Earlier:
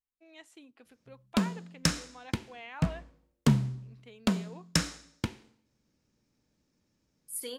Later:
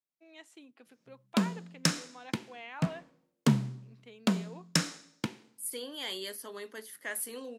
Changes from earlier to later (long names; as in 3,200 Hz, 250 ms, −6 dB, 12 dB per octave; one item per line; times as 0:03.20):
second voice: entry −1.70 s
master: add high-pass filter 140 Hz 24 dB per octave